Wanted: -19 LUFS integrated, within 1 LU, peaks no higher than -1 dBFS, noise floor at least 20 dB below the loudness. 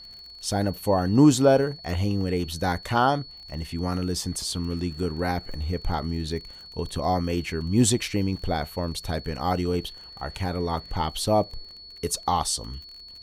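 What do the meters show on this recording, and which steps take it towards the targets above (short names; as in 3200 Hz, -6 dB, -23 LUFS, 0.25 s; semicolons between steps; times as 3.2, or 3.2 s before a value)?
ticks 38/s; steady tone 4400 Hz; tone level -42 dBFS; loudness -26.0 LUFS; peak -6.0 dBFS; loudness target -19.0 LUFS
-> de-click; notch 4400 Hz, Q 30; gain +7 dB; limiter -1 dBFS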